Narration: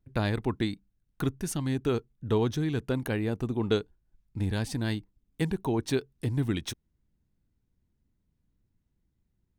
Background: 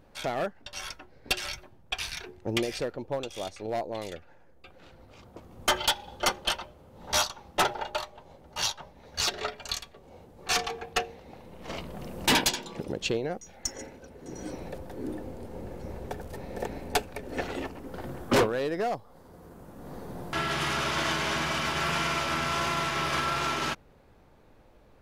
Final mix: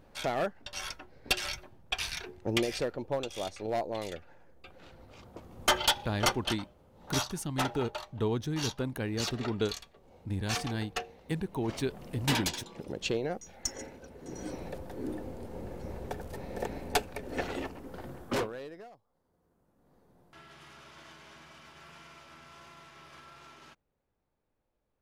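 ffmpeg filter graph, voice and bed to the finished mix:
-filter_complex "[0:a]adelay=5900,volume=-4.5dB[a];[1:a]volume=5.5dB,afade=t=out:st=6.22:d=0.33:silence=0.446684,afade=t=in:st=12.77:d=0.45:silence=0.501187,afade=t=out:st=17.52:d=1.39:silence=0.0749894[b];[a][b]amix=inputs=2:normalize=0"

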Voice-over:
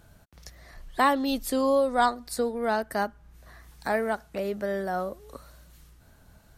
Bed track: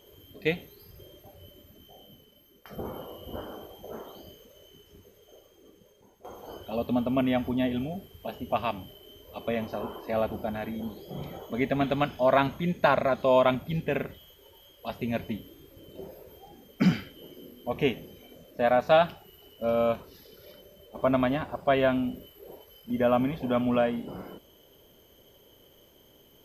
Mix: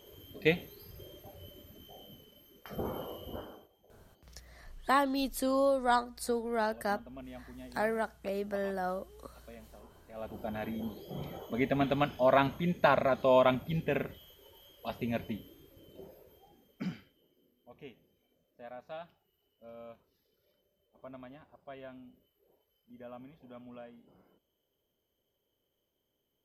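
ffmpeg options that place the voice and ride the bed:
-filter_complex "[0:a]adelay=3900,volume=-5dB[a];[1:a]volume=18.5dB,afade=t=out:st=3.11:d=0.58:silence=0.0841395,afade=t=in:st=10.13:d=0.51:silence=0.11885,afade=t=out:st=14.87:d=2.38:silence=0.0891251[b];[a][b]amix=inputs=2:normalize=0"

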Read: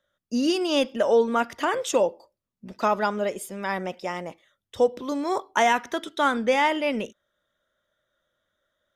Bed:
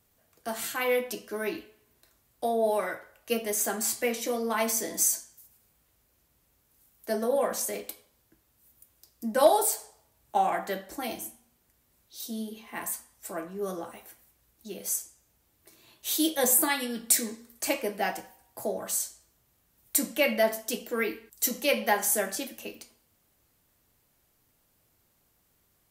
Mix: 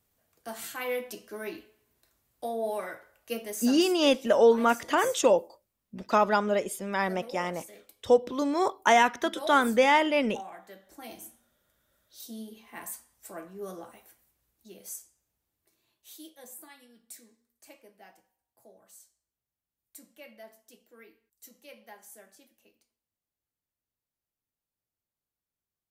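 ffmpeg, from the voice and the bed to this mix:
-filter_complex "[0:a]adelay=3300,volume=0dB[a];[1:a]volume=5dB,afade=t=out:st=3.39:d=0.56:silence=0.281838,afade=t=in:st=10.79:d=0.55:silence=0.298538,afade=t=out:st=13.76:d=2.6:silence=0.11885[b];[a][b]amix=inputs=2:normalize=0"

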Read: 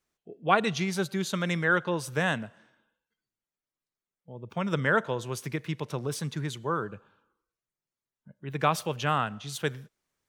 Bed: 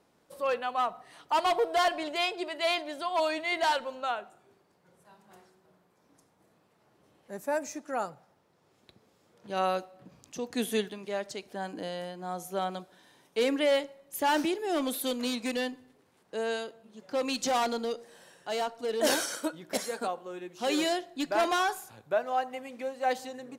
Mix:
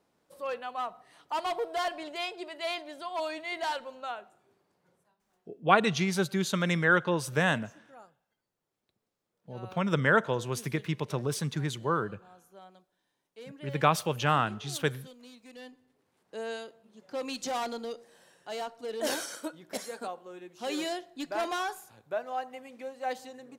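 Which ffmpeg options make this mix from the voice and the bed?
-filter_complex "[0:a]adelay=5200,volume=1dB[a];[1:a]volume=9.5dB,afade=t=out:st=4.88:d=0.27:silence=0.188365,afade=t=in:st=15.48:d=0.86:silence=0.177828[b];[a][b]amix=inputs=2:normalize=0"

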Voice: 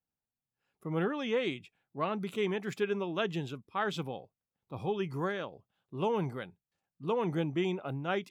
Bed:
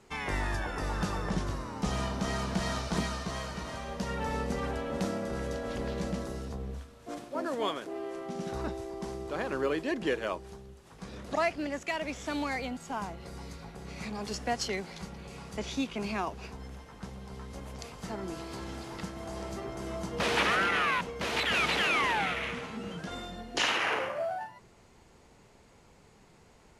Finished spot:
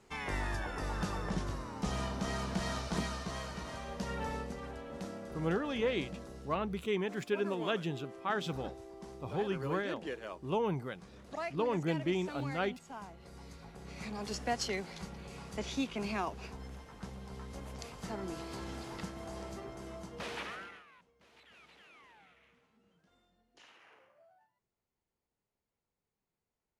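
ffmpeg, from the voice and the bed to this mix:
-filter_complex "[0:a]adelay=4500,volume=-1.5dB[a];[1:a]volume=4dB,afade=t=out:st=4.23:d=0.32:silence=0.473151,afade=t=in:st=13.12:d=1.24:silence=0.398107,afade=t=out:st=18.92:d=1.92:silence=0.0334965[b];[a][b]amix=inputs=2:normalize=0"

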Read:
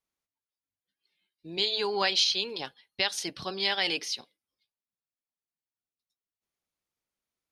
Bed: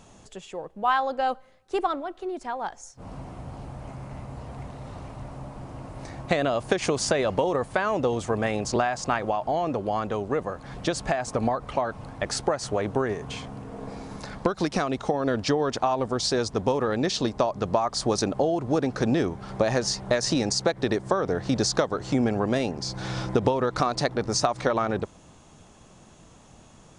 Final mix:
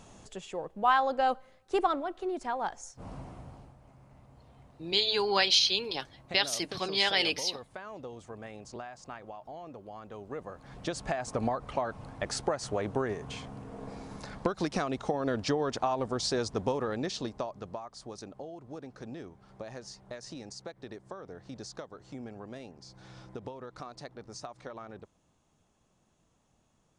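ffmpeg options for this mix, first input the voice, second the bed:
-filter_complex "[0:a]adelay=3350,volume=1dB[a];[1:a]volume=11.5dB,afade=t=out:st=2.9:d=0.86:silence=0.141254,afade=t=in:st=10.01:d=1.34:silence=0.223872,afade=t=out:st=16.55:d=1.34:silence=0.199526[b];[a][b]amix=inputs=2:normalize=0"

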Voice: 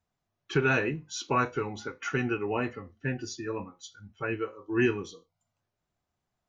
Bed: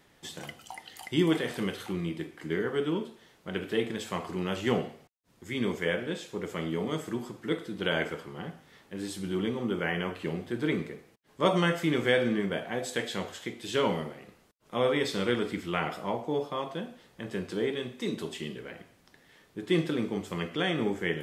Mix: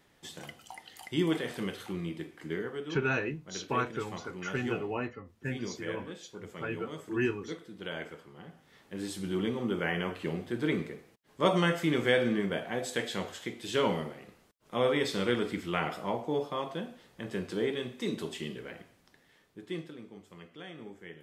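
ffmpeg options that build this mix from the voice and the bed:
-filter_complex "[0:a]adelay=2400,volume=-4.5dB[a];[1:a]volume=5.5dB,afade=t=out:st=2.48:d=0.35:silence=0.473151,afade=t=in:st=8.47:d=0.47:silence=0.354813,afade=t=out:st=18.71:d=1.23:silence=0.158489[b];[a][b]amix=inputs=2:normalize=0"

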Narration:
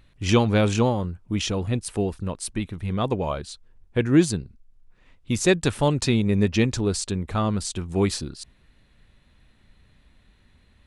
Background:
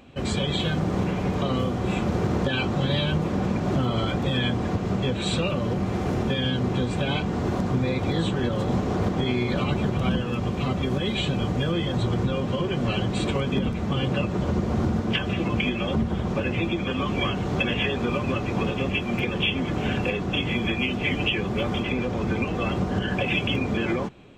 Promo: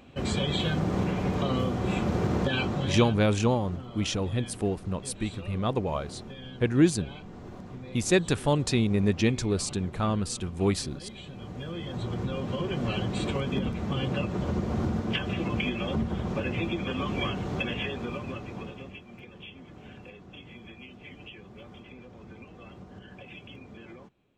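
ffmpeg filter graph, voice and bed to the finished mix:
-filter_complex "[0:a]adelay=2650,volume=-3.5dB[a];[1:a]volume=11dB,afade=t=out:st=2.59:d=0.66:silence=0.16788,afade=t=in:st=11.32:d=1.38:silence=0.211349,afade=t=out:st=17.21:d=1.84:silence=0.141254[b];[a][b]amix=inputs=2:normalize=0"

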